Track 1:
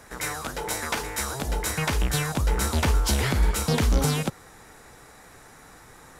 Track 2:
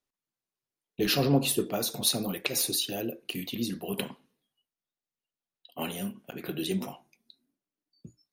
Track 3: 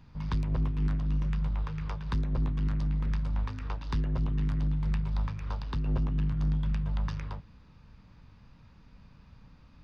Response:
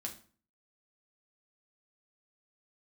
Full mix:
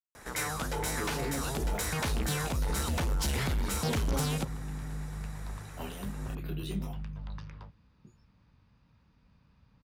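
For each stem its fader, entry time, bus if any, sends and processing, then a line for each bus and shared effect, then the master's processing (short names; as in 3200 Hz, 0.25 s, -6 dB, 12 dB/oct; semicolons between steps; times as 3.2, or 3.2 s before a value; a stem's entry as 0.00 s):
-1.5 dB, 0.15 s, no send, soft clip -22.5 dBFS, distortion -11 dB
-3.5 dB, 0.00 s, no send, expander -55 dBFS; de-esser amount 70%; detuned doubles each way 14 cents
-8.5 dB, 0.30 s, no send, HPF 45 Hz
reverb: off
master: limiter -24 dBFS, peak gain reduction 7.5 dB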